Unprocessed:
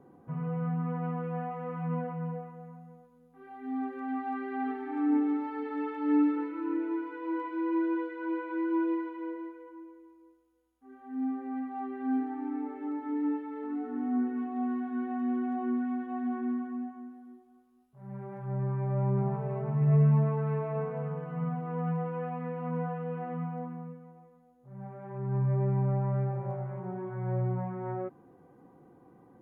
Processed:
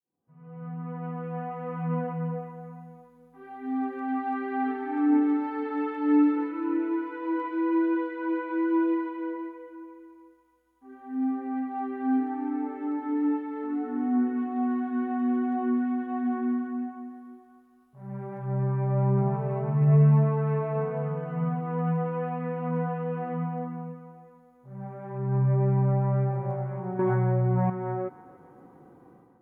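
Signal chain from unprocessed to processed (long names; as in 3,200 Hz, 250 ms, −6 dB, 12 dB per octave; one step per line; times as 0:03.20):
fade in at the beginning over 2.10 s
automatic gain control gain up to 12.5 dB
delay with a band-pass on its return 284 ms, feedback 54%, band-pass 1,300 Hz, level −15.5 dB
0:26.99–0:27.70: envelope flattener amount 100%
level −8 dB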